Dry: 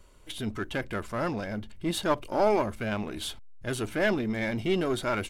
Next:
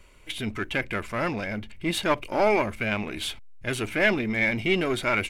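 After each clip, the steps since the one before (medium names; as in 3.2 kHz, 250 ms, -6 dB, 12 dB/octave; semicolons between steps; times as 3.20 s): peaking EQ 2.3 kHz +11.5 dB 0.65 oct; trim +1.5 dB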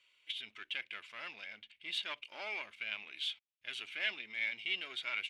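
band-pass filter 3.2 kHz, Q 2.8; trim -3.5 dB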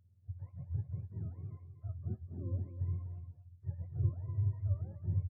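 spectrum inverted on a logarithmic axis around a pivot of 470 Hz; delay 245 ms -10.5 dB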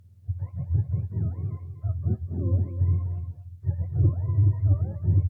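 sine folder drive 3 dB, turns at -21 dBFS; trim +7 dB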